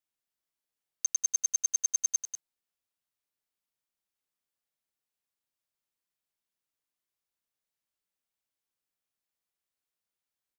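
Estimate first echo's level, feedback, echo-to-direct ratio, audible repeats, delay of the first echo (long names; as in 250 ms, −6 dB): −10.5 dB, repeats not evenly spaced, −10.5 dB, 1, 191 ms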